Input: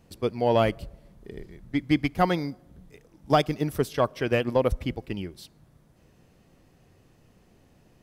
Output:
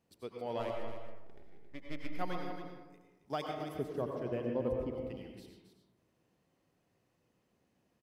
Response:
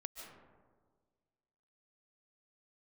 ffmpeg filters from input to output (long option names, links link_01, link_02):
-filter_complex "[0:a]highpass=frequency=200:poles=1,asplit=3[link_01][link_02][link_03];[link_01]afade=type=out:start_time=0.59:duration=0.02[link_04];[link_02]aeval=exprs='max(val(0),0)':channel_layout=same,afade=type=in:start_time=0.59:duration=0.02,afade=type=out:start_time=2.08:duration=0.02[link_05];[link_03]afade=type=in:start_time=2.08:duration=0.02[link_06];[link_04][link_05][link_06]amix=inputs=3:normalize=0,asettb=1/sr,asplit=3[link_07][link_08][link_09];[link_07]atrim=end=3.744[link_10];[link_08]atrim=start=3.74:end=4.93,asetpts=PTS-STARTPTS,afade=type=in:duration=0.004:curve=qsin,afade=type=out:start_time=1.186:duration=0.004:curve=qsin,tiltshelf=frequency=740:gain=9.5[link_11];[link_09]atrim=start=4.926[link_12];[link_10][link_11]acrossfade=duration=0.004:curve1=hsin:curve2=qsin[link_13];[link_13][link_12]acrossfade=duration=0.004:curve1=qsin:curve2=hsin,aecho=1:1:271:0.335[link_14];[1:a]atrim=start_sample=2205,asetrate=70560,aresample=44100[link_15];[link_14][link_15]afir=irnorm=-1:irlink=0,volume=-7dB"